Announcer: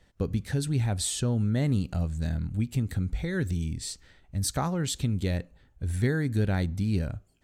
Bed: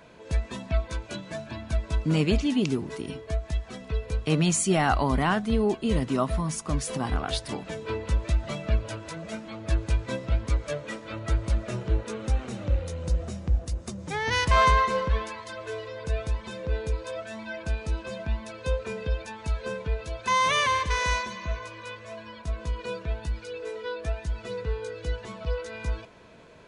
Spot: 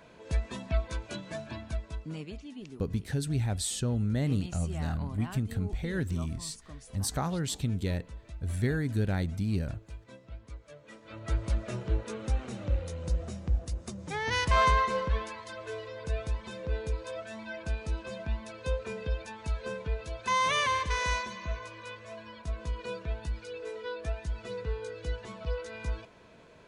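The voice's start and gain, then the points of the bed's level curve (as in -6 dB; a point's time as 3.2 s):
2.60 s, -3.0 dB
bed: 1.55 s -3 dB
2.32 s -19.5 dB
10.72 s -19.5 dB
11.36 s -4 dB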